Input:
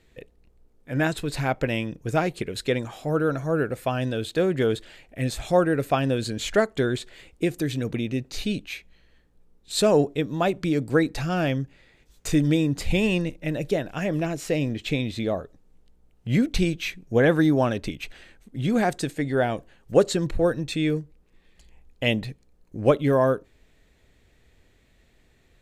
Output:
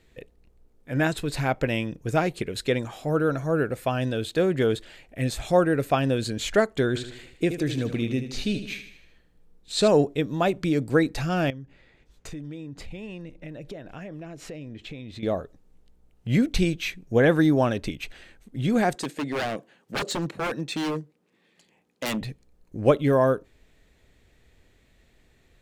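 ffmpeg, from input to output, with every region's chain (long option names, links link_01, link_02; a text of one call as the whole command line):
ffmpeg -i in.wav -filter_complex "[0:a]asettb=1/sr,asplit=3[link_01][link_02][link_03];[link_01]atrim=end=6.884[link_04];[link_02]atrim=start=6.88:end=9.88,asetpts=PTS-STARTPTS,afade=type=in:duration=0.004:curve=qsin,afade=type=out:start_time=2.996:duration=0.004:curve=qsin,acrossover=split=8400[link_05][link_06];[link_06]acompressor=threshold=-56dB:ratio=4:attack=1:release=60[link_07];[link_05][link_07]amix=inputs=2:normalize=0,aecho=1:1:77|154|231|308|385:0.316|0.158|0.0791|0.0395|0.0198,atrim=end_sample=132300[link_08];[link_03]atrim=start=9.876[link_09];[link_04][link_08]acrossfade=duration=0.004:curve1=hsin:curve2=qsin[link_10];[link_10][link_09]acrossfade=duration=0.004:curve1=qsin:curve2=hsin,asettb=1/sr,asplit=3[link_11][link_12][link_13];[link_11]atrim=end=11.504[link_14];[link_12]atrim=start=11.5:end=15.23,asetpts=PTS-STARTPTS,afade=type=in:duration=0.004:curve=qsin,afade=type=out:start_time=3.726:duration=0.004:curve=qsin,lowpass=frequency=3100:poles=1,acompressor=threshold=-37dB:ratio=4:attack=3.2:release=140:knee=1:detection=peak[link_15];[link_13]atrim=start=15.226[link_16];[link_14][link_15]acrossfade=duration=0.004:curve1=hsin:curve2=qsin[link_17];[link_17][link_16]acrossfade=duration=0.004:curve1=qsin:curve2=hsin,asettb=1/sr,asplit=3[link_18][link_19][link_20];[link_18]atrim=end=18.954[link_21];[link_19]atrim=start=18.95:end=22.21,asetpts=PTS-STARTPTS,afade=type=in:duration=0.004:curve=qsin,afade=type=out:start_time=3.256:duration=0.004:curve=qsin,highpass=frequency=160:width=0.5412,highpass=frequency=160:width=1.3066,highshelf=frequency=9200:gain=-5,aeval=exprs='0.0794*(abs(mod(val(0)/0.0794+3,4)-2)-1)':channel_layout=same[link_22];[link_20]atrim=start=22.206[link_23];[link_21][link_22]acrossfade=duration=0.004:curve1=hsin:curve2=qsin[link_24];[link_24][link_23]acrossfade=duration=0.004:curve1=qsin:curve2=hsin" out.wav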